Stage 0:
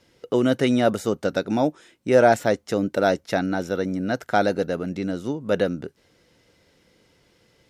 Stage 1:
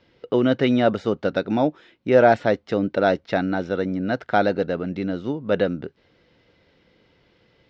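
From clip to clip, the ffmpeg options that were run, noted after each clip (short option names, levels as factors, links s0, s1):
-af "lowpass=f=4200:w=0.5412,lowpass=f=4200:w=1.3066,volume=1.12"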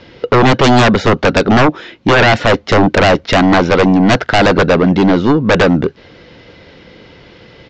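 -af "alimiter=limit=0.282:level=0:latency=1:release=126,aresample=16000,aeval=exprs='0.299*sin(PI/2*3.55*val(0)/0.299)':c=same,aresample=44100,volume=1.88"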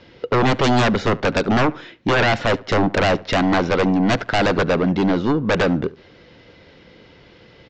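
-filter_complex "[0:a]asplit=2[s0][s1];[s1]adelay=72,lowpass=f=2600:p=1,volume=0.0944,asplit=2[s2][s3];[s3]adelay=72,lowpass=f=2600:p=1,volume=0.4,asplit=2[s4][s5];[s5]adelay=72,lowpass=f=2600:p=1,volume=0.4[s6];[s0][s2][s4][s6]amix=inputs=4:normalize=0,volume=0.398"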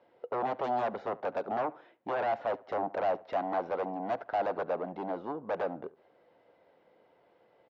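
-af "bandpass=f=720:t=q:w=2.3:csg=0,volume=0.398"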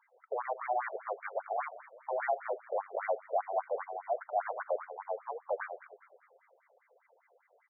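-filter_complex "[0:a]lowpass=f=2400:t=q:w=4.6,asplit=7[s0][s1][s2][s3][s4][s5][s6];[s1]adelay=206,afreqshift=-94,volume=0.141[s7];[s2]adelay=412,afreqshift=-188,volume=0.0832[s8];[s3]adelay=618,afreqshift=-282,volume=0.049[s9];[s4]adelay=824,afreqshift=-376,volume=0.0292[s10];[s5]adelay=1030,afreqshift=-470,volume=0.0172[s11];[s6]adelay=1236,afreqshift=-564,volume=0.0101[s12];[s0][s7][s8][s9][s10][s11][s12]amix=inputs=7:normalize=0,afftfilt=real='re*between(b*sr/1024,510*pow(1700/510,0.5+0.5*sin(2*PI*5*pts/sr))/1.41,510*pow(1700/510,0.5+0.5*sin(2*PI*5*pts/sr))*1.41)':imag='im*between(b*sr/1024,510*pow(1700/510,0.5+0.5*sin(2*PI*5*pts/sr))/1.41,510*pow(1700/510,0.5+0.5*sin(2*PI*5*pts/sr))*1.41)':win_size=1024:overlap=0.75"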